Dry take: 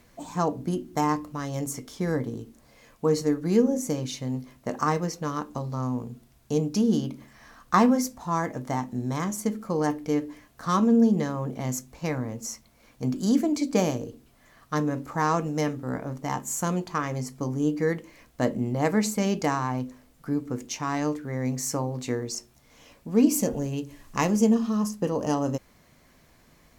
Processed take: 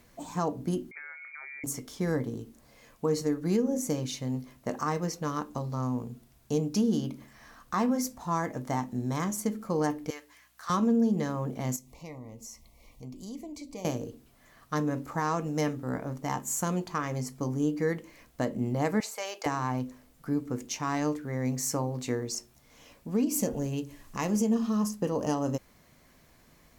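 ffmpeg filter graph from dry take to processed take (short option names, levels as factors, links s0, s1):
-filter_complex "[0:a]asettb=1/sr,asplit=3[s0][s1][s2];[s0]atrim=end=0.914[s3];[s1]atrim=start=0.91:end=1.64,asetpts=PTS-STARTPTS,afade=t=in:d=0.004:c=qsin,afade=t=out:st=0.726:d=0.004:c=qsin,acompressor=threshold=0.0141:ratio=16:attack=3.2:release=140:knee=1:detection=peak,bandreject=f=50:t=h:w=6,bandreject=f=100:t=h:w=6,bandreject=f=150:t=h:w=6,bandreject=f=200:t=h:w=6,lowpass=f=2100:t=q:w=0.5098,lowpass=f=2100:t=q:w=0.6013,lowpass=f=2100:t=q:w=0.9,lowpass=f=2100:t=q:w=2.563,afreqshift=-2500[s4];[s2]atrim=start=1.636[s5];[s3][s4]acrossfade=d=0.004:c1=hsin:c2=qsin[s6];[s6][s5]acrossfade=d=0.004:c1=qsin:c2=hsin,asettb=1/sr,asplit=3[s7][s8][s9];[s7]atrim=end=10.104[s10];[s8]atrim=start=10.1:end=10.7,asetpts=PTS-STARTPTS,afade=t=in:d=0.004:c=qsin,afade=t=out:st=0.596:d=0.004:c=qsin,highpass=1200,aeval=exprs='val(0)+0.000251*(sin(2*PI*60*n/s)+sin(2*PI*2*60*n/s)/2+sin(2*PI*3*60*n/s)/3+sin(2*PI*4*60*n/s)/4+sin(2*PI*5*60*n/s)/5)':c=same[s11];[s9]atrim=start=10.696[s12];[s10][s11]acrossfade=d=0.004:c1=hsin:c2=qsin[s13];[s13][s12]acrossfade=d=0.004:c1=qsin:c2=hsin,asettb=1/sr,asplit=3[s14][s15][s16];[s14]atrim=end=11.764[s17];[s15]atrim=start=11.76:end=13.85,asetpts=PTS-STARTPTS,afade=t=in:d=0.004:c=qsin,afade=t=out:st=2.086:d=0.004:c=qsin,asubboost=boost=11:cutoff=75,acompressor=threshold=0.00447:ratio=2:attack=3.2:release=140:knee=1:detection=peak,asuperstop=centerf=1500:order=12:qfactor=2.2[s18];[s16]atrim=start=13.846[s19];[s17][s18]acrossfade=d=0.004:c1=hsin:c2=qsin[s20];[s20][s19]acrossfade=d=0.004:c1=qsin:c2=hsin,asettb=1/sr,asplit=3[s21][s22][s23];[s21]atrim=end=19.004[s24];[s22]atrim=start=19:end=19.46,asetpts=PTS-STARTPTS,afade=t=in:d=0.004:c=qsin,afade=t=out:st=0.456:d=0.004:c=qsin,highpass=f=580:w=0.5412,highpass=f=580:w=1.3066,acrossover=split=4400[s25][s26];[s26]acompressor=threshold=0.0141:ratio=4:attack=1:release=60[s27];[s25][s27]amix=inputs=2:normalize=0[s28];[s23]atrim=start=19.456[s29];[s24][s28]acrossfade=d=0.004:c1=hsin:c2=qsin[s30];[s30][s29]acrossfade=d=0.004:c1=qsin:c2=hsin,highshelf=f=11000:g=4,alimiter=limit=0.158:level=0:latency=1:release=187,volume=0.794"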